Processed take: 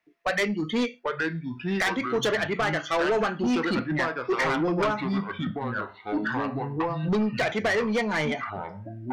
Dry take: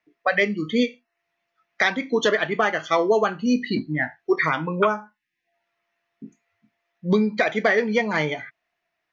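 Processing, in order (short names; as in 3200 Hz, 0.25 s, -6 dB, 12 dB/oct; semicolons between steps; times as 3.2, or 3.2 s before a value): echoes that change speed 0.722 s, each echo -4 st, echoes 2, each echo -6 dB; soft clip -20 dBFS, distortion -10 dB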